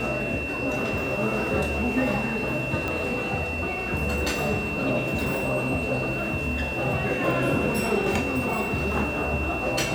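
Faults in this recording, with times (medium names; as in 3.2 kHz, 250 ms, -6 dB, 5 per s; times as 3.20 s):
whine 2.7 kHz -30 dBFS
2.88 s: pop -15 dBFS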